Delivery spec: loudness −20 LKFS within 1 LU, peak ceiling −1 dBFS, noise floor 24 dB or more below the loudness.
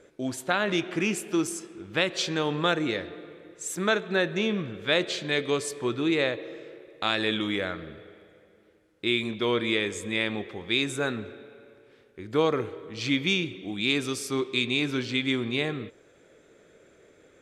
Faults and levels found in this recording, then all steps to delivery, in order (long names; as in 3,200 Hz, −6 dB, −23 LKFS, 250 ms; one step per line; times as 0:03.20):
integrated loudness −27.5 LKFS; sample peak −9.0 dBFS; target loudness −20.0 LKFS
→ level +7.5 dB